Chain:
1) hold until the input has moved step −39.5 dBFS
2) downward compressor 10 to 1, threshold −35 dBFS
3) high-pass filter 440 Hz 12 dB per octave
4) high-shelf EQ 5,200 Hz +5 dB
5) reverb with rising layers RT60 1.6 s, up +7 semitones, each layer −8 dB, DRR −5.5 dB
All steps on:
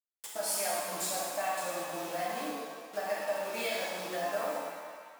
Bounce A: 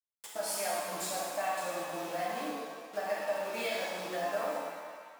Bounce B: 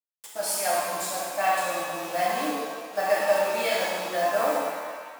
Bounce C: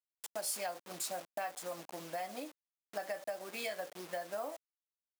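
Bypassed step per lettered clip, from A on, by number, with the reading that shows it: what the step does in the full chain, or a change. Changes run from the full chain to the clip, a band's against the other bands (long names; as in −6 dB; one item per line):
4, 8 kHz band −3.5 dB
2, average gain reduction 5.0 dB
5, change in crest factor +3.5 dB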